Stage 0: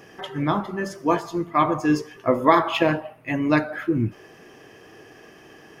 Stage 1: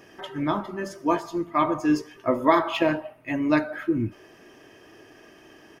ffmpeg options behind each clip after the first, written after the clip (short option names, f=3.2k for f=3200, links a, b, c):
-af "aecho=1:1:3.2:0.34,volume=-3.5dB"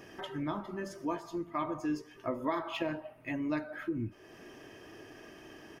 -af "lowshelf=f=200:g=4,acompressor=threshold=-39dB:ratio=2,volume=-1.5dB"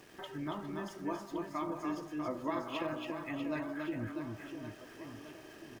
-af "aecho=1:1:280|644|1117|1732|2532:0.631|0.398|0.251|0.158|0.1,aeval=exprs='val(0)*gte(abs(val(0)),0.00266)':c=same,volume=-4dB"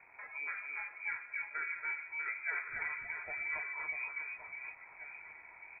-af "lowpass=f=2.2k:t=q:w=0.5098,lowpass=f=2.2k:t=q:w=0.6013,lowpass=f=2.2k:t=q:w=0.9,lowpass=f=2.2k:t=q:w=2.563,afreqshift=-2600,volume=-2dB"